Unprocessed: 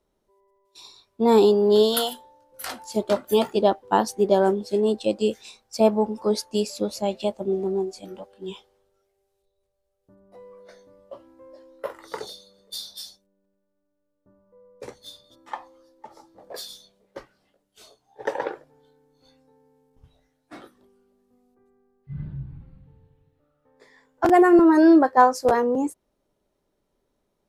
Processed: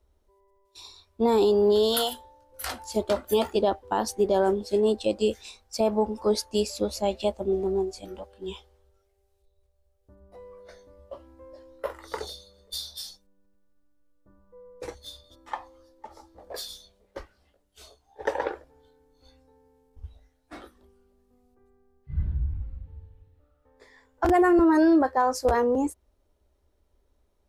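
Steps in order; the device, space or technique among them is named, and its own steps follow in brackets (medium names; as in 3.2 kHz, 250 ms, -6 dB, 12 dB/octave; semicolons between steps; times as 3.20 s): car stereo with a boomy subwoofer (resonant low shelf 100 Hz +10.5 dB, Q 3; peak limiter -13.5 dBFS, peak gain reduction 9 dB); 13.03–14.95 s: comb 6.1 ms, depth 78%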